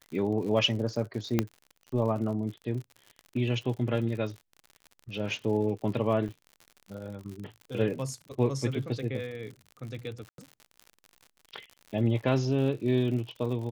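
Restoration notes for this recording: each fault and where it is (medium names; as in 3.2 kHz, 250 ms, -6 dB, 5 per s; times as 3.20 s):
crackle 71 per s -38 dBFS
1.39 s: pop -11 dBFS
6.28–6.29 s: dropout 7.3 ms
10.29–10.38 s: dropout 92 ms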